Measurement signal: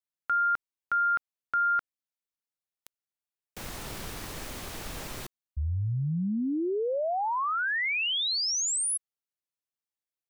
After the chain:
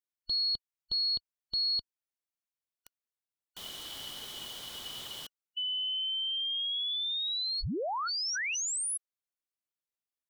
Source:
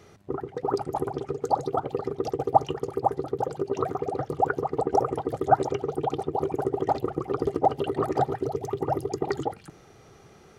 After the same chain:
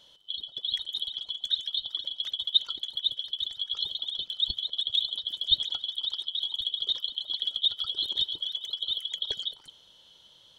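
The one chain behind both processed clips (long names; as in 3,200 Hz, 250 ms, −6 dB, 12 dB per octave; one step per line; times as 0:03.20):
band-splitting scrambler in four parts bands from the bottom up 2413
level −4.5 dB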